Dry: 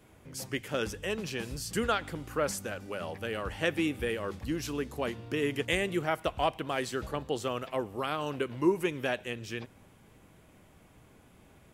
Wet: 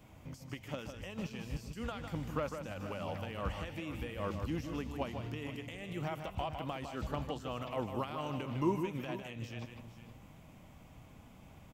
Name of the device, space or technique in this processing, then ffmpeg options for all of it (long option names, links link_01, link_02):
de-esser from a sidechain: -filter_complex "[0:a]asplit=2[link_01][link_02];[link_02]highpass=5000,apad=whole_len=517403[link_03];[link_01][link_03]sidechaincompress=threshold=-54dB:ratio=8:attack=1.5:release=90,equalizer=frequency=400:width_type=o:width=0.67:gain=-10,equalizer=frequency=1600:width_type=o:width=0.67:gain=-8,equalizer=frequency=4000:width_type=o:width=0.67:gain=-4,equalizer=frequency=10000:width_type=o:width=0.67:gain=-12,aecho=1:1:154|443|469:0.422|0.126|0.2,volume=3.5dB"